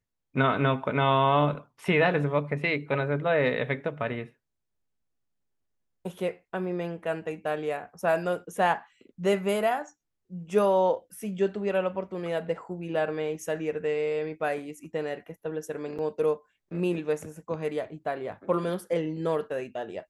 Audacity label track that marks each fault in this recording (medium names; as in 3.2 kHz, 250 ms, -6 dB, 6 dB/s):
15.980000	15.990000	dropout 7.6 ms